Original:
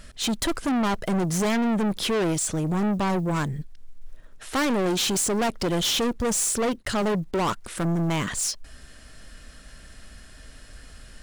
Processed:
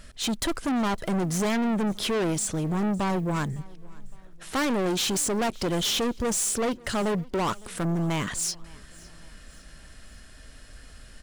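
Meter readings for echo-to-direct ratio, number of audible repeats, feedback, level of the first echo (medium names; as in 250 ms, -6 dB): -23.0 dB, 2, 47%, -24.0 dB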